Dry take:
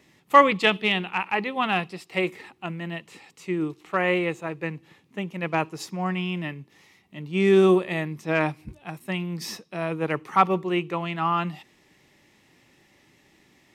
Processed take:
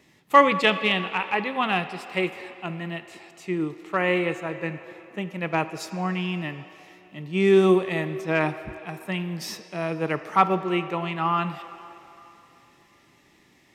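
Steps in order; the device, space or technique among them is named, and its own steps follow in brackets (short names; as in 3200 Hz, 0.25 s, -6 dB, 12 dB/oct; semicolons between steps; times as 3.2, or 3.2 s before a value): filtered reverb send (on a send: HPF 280 Hz 24 dB/oct + LPF 6900 Hz 12 dB/oct + reverb RT60 3.1 s, pre-delay 3 ms, DRR 10.5 dB)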